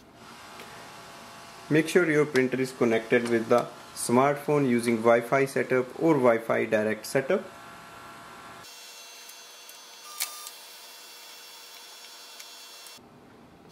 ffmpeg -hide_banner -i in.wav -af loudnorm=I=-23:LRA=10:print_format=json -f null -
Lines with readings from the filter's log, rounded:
"input_i" : "-25.1",
"input_tp" : "-7.1",
"input_lra" : "19.5",
"input_thresh" : "-39.1",